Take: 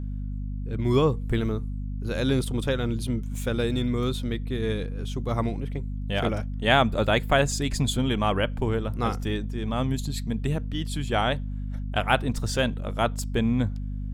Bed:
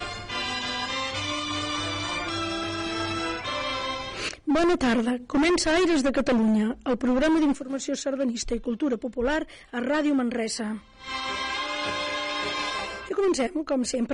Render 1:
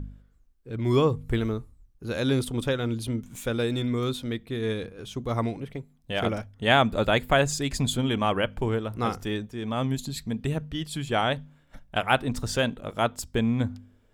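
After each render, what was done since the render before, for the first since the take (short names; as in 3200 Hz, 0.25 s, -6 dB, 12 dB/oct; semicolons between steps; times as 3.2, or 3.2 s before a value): de-hum 50 Hz, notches 5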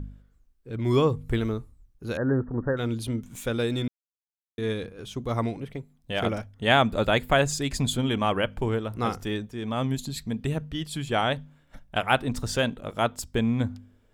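2.17–2.77 brick-wall FIR low-pass 1900 Hz; 3.88–4.58 mute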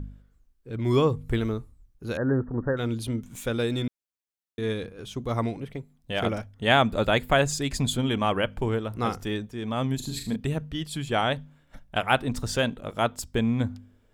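9.96–10.36 flutter echo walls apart 6.6 m, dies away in 0.42 s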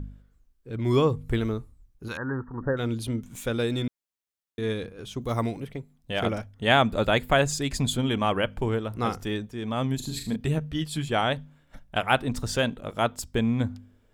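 2.08–2.61 resonant low shelf 780 Hz -6 dB, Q 3; 5.21–5.67 high shelf 8500 Hz +11.5 dB; 10.39–11.08 doubler 13 ms -5.5 dB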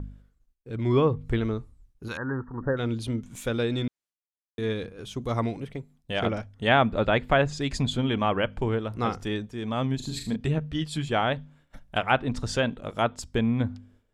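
expander -54 dBFS; treble ducked by the level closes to 2800 Hz, closed at -19 dBFS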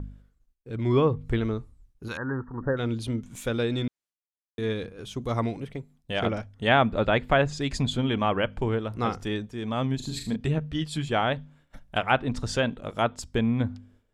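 nothing audible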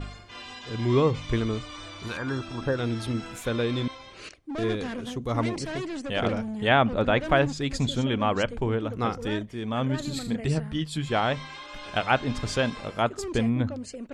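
add bed -12 dB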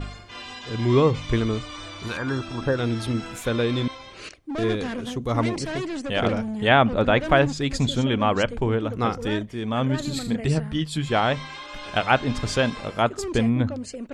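gain +3.5 dB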